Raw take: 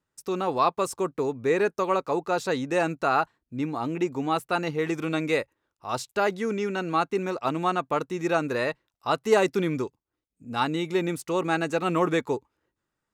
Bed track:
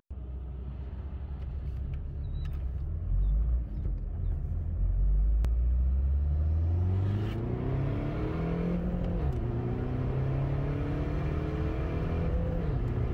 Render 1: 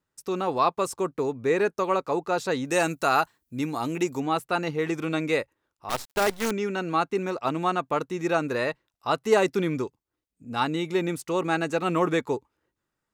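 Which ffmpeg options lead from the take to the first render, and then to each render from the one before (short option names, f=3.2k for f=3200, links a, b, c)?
-filter_complex "[0:a]asettb=1/sr,asplit=3[a][b][c];[a]atrim=end=2.654[d];[b]atrim=start=2.65:end=4.2,asetpts=PTS-STARTPTS,afade=t=in:d=0.004:c=qsin,afade=t=out:st=1.546:d=0.004:c=qsin,aemphasis=mode=production:type=75kf[e];[c]atrim=start=4.196[f];[d][e]acrossfade=d=0.004:c1=hsin:c2=qsin[g];[g][f]acrossfade=d=0.004:c1=qsin:c2=hsin,asettb=1/sr,asplit=3[h][i][j];[h]atrim=end=5.894[k];[i]atrim=start=5.89:end=6.51,asetpts=PTS-STARTPTS,afade=t=in:d=0.004:c=qsin,afade=t=out:st=0.616:d=0.004:c=qsin,acrusher=bits=5:dc=4:mix=0:aa=0.000001[l];[j]atrim=start=6.506[m];[k][l]acrossfade=d=0.004:c1=hsin:c2=qsin[n];[n][m]acrossfade=d=0.004:c1=qsin:c2=hsin"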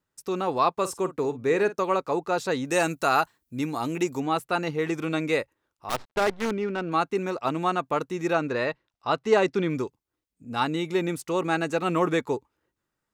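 -filter_complex "[0:a]asettb=1/sr,asplit=3[a][b][c];[a]atrim=end=0.794[d];[b]atrim=start=0.79:end=1.79,asetpts=PTS-STARTPTS,afade=t=in:d=0.004:c=qsin,afade=t=out:st=0.996:d=0.004:c=qsin,asplit=2[e][f];[f]adelay=48,volume=-14dB[g];[e][g]amix=inputs=2:normalize=0,atrim=end_sample=44100[h];[c]atrim=start=1.786[i];[d][h]acrossfade=d=0.004:c1=hsin:c2=qsin[j];[j][i]acrossfade=d=0.004:c1=qsin:c2=hsin,asettb=1/sr,asplit=3[k][l][m];[k]atrim=end=5.964[n];[l]atrim=start=5.96:end=6.92,asetpts=PTS-STARTPTS,afade=t=in:d=0.004:c=qsin,afade=t=out:st=0.956:d=0.004:c=qsin,adynamicsmooth=sensitivity=2.5:basefreq=1.8k[o];[m]atrim=start=6.916[p];[n][o]acrossfade=d=0.004:c1=hsin:c2=qsin[q];[q][p]acrossfade=d=0.004:c1=qsin:c2=hsin,asettb=1/sr,asplit=3[r][s][t];[r]atrim=end=8.334[u];[s]atrim=start=8.33:end=9.7,asetpts=PTS-STARTPTS,afade=t=in:d=0.004:c=qsin,afade=t=out:st=1.366:d=0.004:c=qsin,lowpass=5.4k[v];[t]atrim=start=9.696[w];[u][v]acrossfade=d=0.004:c1=hsin:c2=qsin[x];[x][w]acrossfade=d=0.004:c1=qsin:c2=hsin"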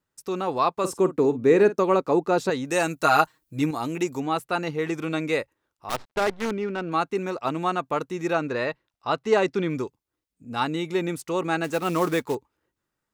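-filter_complex "[0:a]asettb=1/sr,asplit=3[a][b][c];[a]atrim=end=0.844[d];[b]atrim=start=0.84:end=2.5,asetpts=PTS-STARTPTS,afade=t=in:d=0.004:c=qsin,afade=t=out:st=1.656:d=0.004:c=qsin,equalizer=f=260:w=0.64:g=8.5[e];[c]atrim=start=2.496[f];[d][e]acrossfade=d=0.004:c1=hsin:c2=qsin[g];[g][f]acrossfade=d=0.004:c1=qsin:c2=hsin,asettb=1/sr,asplit=3[h][i][j];[h]atrim=end=3.034[k];[i]atrim=start=3.03:end=3.71,asetpts=PTS-STARTPTS,afade=t=in:d=0.004:c=qsin,afade=t=out:st=0.676:d=0.004:c=qsin,aecho=1:1:6.4:0.98,atrim=end_sample=29988[l];[j]atrim=start=3.706[m];[k][l]acrossfade=d=0.004:c1=hsin:c2=qsin[n];[n][m]acrossfade=d=0.004:c1=qsin:c2=hsin,asettb=1/sr,asplit=3[o][p][q];[o]atrim=end=11.644[r];[p]atrim=start=11.64:end=12.35,asetpts=PTS-STARTPTS,afade=t=in:d=0.004:c=qsin,afade=t=out:st=0.706:d=0.004:c=qsin,acrusher=bits=4:mode=log:mix=0:aa=0.000001[s];[q]atrim=start=12.346[t];[r][s]acrossfade=d=0.004:c1=hsin:c2=qsin[u];[u][t]acrossfade=d=0.004:c1=qsin:c2=hsin"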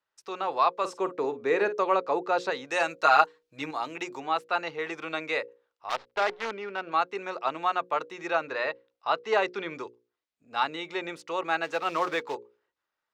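-filter_complex "[0:a]acrossover=split=480 5600:gain=0.112 1 0.0708[a][b][c];[a][b][c]amix=inputs=3:normalize=0,bandreject=f=60:t=h:w=6,bandreject=f=120:t=h:w=6,bandreject=f=180:t=h:w=6,bandreject=f=240:t=h:w=6,bandreject=f=300:t=h:w=6,bandreject=f=360:t=h:w=6,bandreject=f=420:t=h:w=6,bandreject=f=480:t=h:w=6,bandreject=f=540:t=h:w=6"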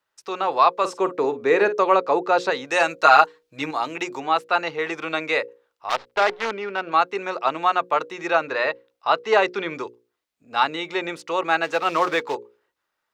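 -af "volume=7dB,alimiter=limit=-1dB:level=0:latency=1"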